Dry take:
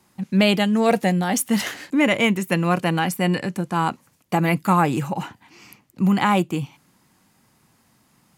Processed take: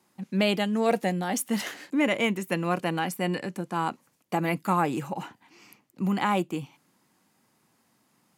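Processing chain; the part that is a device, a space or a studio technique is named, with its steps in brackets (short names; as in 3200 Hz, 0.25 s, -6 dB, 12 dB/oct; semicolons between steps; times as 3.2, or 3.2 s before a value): filter by subtraction (in parallel: LPF 330 Hz 12 dB/oct + phase invert); on the sum: gain -7 dB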